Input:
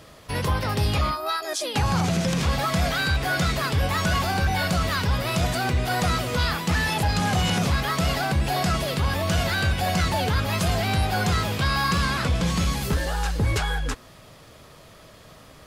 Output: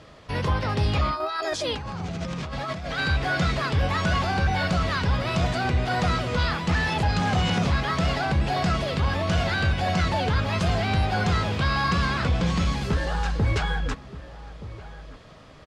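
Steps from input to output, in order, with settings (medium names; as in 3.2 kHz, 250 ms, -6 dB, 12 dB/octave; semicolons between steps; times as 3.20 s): 1.20–2.98 s: compressor with a negative ratio -30 dBFS, ratio -1; distance through air 100 m; echo from a far wall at 210 m, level -15 dB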